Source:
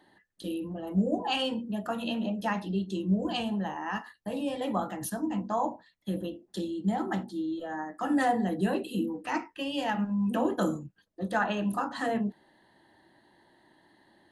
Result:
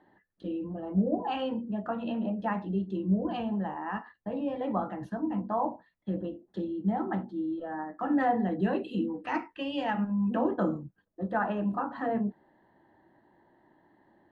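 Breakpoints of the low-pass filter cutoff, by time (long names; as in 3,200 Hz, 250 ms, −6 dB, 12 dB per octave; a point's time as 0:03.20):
0:08.05 1,600 Hz
0:09.02 3,000 Hz
0:09.70 3,000 Hz
0:10.72 1,400 Hz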